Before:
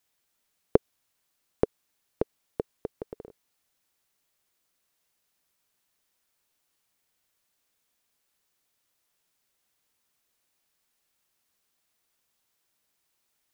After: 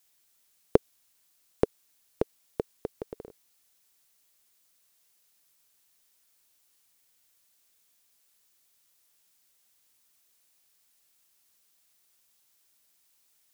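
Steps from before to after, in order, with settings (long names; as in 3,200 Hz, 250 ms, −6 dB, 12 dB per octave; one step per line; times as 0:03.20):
high-shelf EQ 3,200 Hz +9.5 dB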